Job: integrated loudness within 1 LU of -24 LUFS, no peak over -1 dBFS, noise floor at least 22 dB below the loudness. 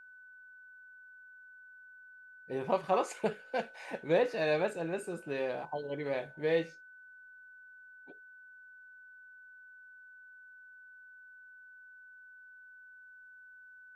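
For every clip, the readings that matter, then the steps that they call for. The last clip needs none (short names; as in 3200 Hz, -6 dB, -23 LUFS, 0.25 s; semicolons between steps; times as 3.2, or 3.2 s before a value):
steady tone 1500 Hz; tone level -52 dBFS; loudness -34.0 LUFS; peak -16.0 dBFS; loudness target -24.0 LUFS
-> notch 1500 Hz, Q 30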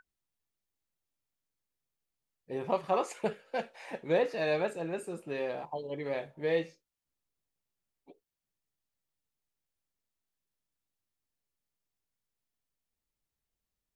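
steady tone none; loudness -34.0 LUFS; peak -16.0 dBFS; loudness target -24.0 LUFS
-> gain +10 dB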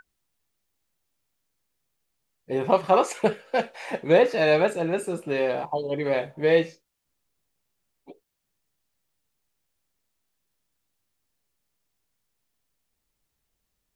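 loudness -24.0 LUFS; peak -6.0 dBFS; noise floor -79 dBFS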